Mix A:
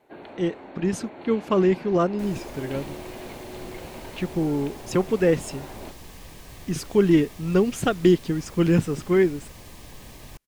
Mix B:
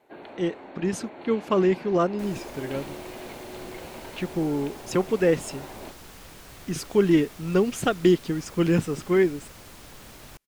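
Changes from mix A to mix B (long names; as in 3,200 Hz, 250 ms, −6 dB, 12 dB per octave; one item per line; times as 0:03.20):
second sound: remove Butterworth band-reject 1,400 Hz, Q 5.6
master: add low-shelf EQ 180 Hz −6 dB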